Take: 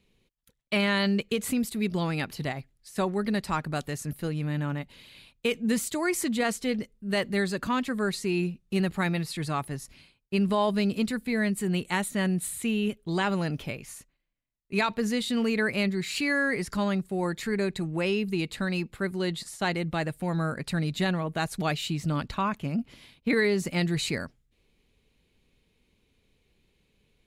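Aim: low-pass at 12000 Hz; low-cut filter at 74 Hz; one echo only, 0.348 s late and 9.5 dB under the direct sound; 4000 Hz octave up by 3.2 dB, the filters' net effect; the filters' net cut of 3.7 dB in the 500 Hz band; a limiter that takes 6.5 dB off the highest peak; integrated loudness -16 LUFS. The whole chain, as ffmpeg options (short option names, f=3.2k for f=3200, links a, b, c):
-af "highpass=74,lowpass=12k,equalizer=f=500:t=o:g=-5,equalizer=f=4k:t=o:g=4,alimiter=limit=-18.5dB:level=0:latency=1,aecho=1:1:348:0.335,volume=13.5dB"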